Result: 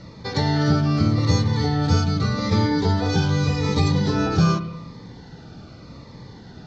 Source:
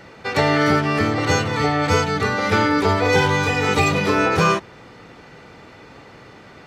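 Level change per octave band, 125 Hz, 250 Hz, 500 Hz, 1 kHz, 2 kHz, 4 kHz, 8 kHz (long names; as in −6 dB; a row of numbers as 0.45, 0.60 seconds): +4.5, +0.5, −7.5, −8.0, −12.0, −2.5, −5.5 decibels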